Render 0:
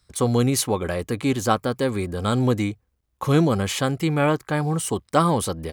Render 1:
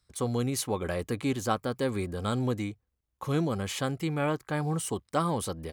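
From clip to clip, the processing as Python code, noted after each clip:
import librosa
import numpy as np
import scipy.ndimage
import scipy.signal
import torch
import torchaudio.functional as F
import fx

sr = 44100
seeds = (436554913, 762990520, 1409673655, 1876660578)

y = fx.rider(x, sr, range_db=10, speed_s=0.5)
y = F.gain(torch.from_numpy(y), -8.0).numpy()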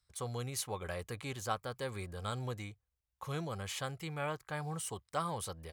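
y = fx.peak_eq(x, sr, hz=270.0, db=-13.0, octaves=1.2)
y = F.gain(torch.from_numpy(y), -5.5).numpy()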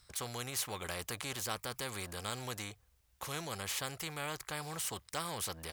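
y = fx.spectral_comp(x, sr, ratio=2.0)
y = F.gain(torch.from_numpy(y), 1.0).numpy()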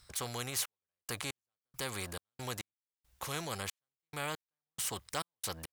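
y = fx.step_gate(x, sr, bpm=69, pattern='xxx..x..xx.x..', floor_db=-60.0, edge_ms=4.5)
y = F.gain(torch.from_numpy(y), 2.0).numpy()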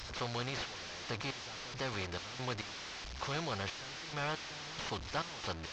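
y = fx.delta_mod(x, sr, bps=32000, step_db=-40.5)
y = F.gain(torch.from_numpy(y), 2.0).numpy()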